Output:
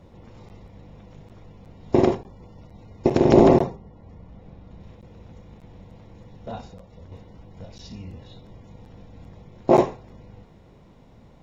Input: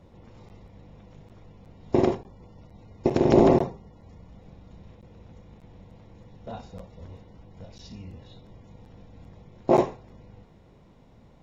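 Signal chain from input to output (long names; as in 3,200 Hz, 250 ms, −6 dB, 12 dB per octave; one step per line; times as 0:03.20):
0:03.75–0:04.79: low-pass filter 1,700 Hz → 3,300 Hz 6 dB per octave
0:06.66–0:07.12: downward compressor 4 to 1, threshold −45 dBFS, peak gain reduction 8 dB
level +3.5 dB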